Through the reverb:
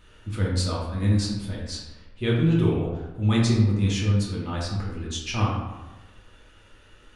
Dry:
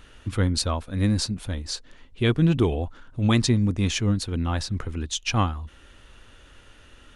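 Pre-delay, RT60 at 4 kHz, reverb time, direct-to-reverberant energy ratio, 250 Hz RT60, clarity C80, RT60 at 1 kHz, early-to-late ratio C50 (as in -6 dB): 3 ms, 0.65 s, 1.1 s, -5.0 dB, 1.2 s, 4.5 dB, 1.1 s, 2.0 dB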